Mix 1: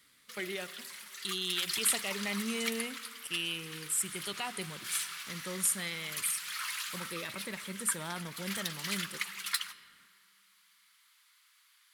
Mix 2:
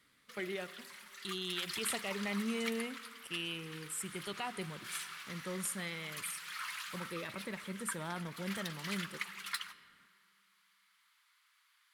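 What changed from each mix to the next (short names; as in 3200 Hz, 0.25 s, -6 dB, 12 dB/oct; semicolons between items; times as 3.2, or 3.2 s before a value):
master: add high shelf 2900 Hz -10.5 dB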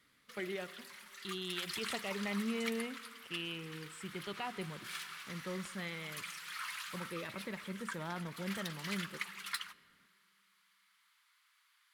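speech: add air absorption 120 m; background: send -6.0 dB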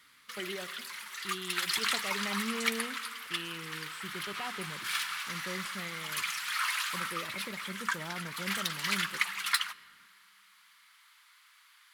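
background +11.0 dB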